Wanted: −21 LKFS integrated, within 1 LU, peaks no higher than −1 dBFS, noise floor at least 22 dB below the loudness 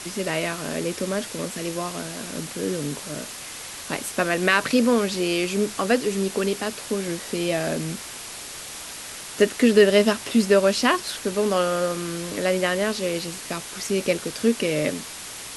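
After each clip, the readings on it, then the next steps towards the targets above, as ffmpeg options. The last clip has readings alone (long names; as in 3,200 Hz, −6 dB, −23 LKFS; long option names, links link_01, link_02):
background noise floor −37 dBFS; target noise floor −46 dBFS; integrated loudness −23.5 LKFS; sample peak −4.0 dBFS; target loudness −21.0 LKFS
→ -af "afftdn=noise_reduction=9:noise_floor=-37"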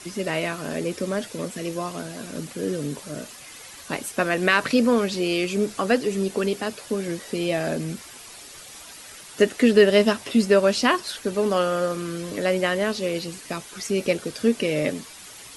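background noise floor −43 dBFS; target noise floor −46 dBFS
→ -af "afftdn=noise_reduction=6:noise_floor=-43"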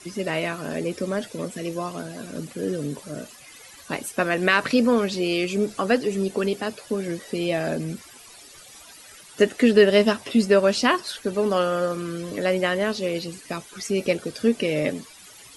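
background noise floor −47 dBFS; integrated loudness −23.5 LKFS; sample peak −4.0 dBFS; target loudness −21.0 LKFS
→ -af "volume=2.5dB"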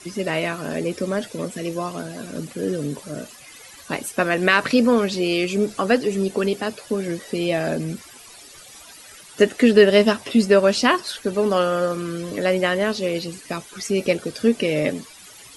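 integrated loudness −21.0 LKFS; sample peak −1.5 dBFS; background noise floor −44 dBFS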